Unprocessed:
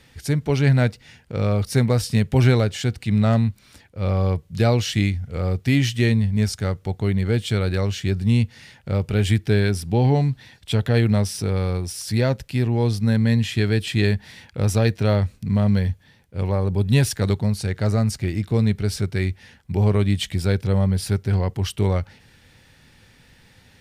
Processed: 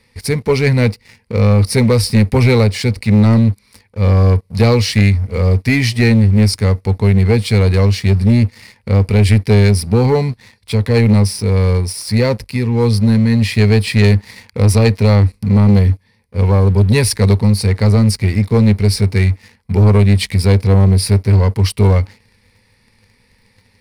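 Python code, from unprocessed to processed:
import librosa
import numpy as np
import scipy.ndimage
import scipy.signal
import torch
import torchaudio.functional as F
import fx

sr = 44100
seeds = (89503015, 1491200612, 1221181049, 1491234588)

y = fx.tremolo_shape(x, sr, shape='triangle', hz=1.6, depth_pct=40, at=(10.31, 13.42))
y = fx.ripple_eq(y, sr, per_octave=0.9, db=11)
y = fx.leveller(y, sr, passes=2)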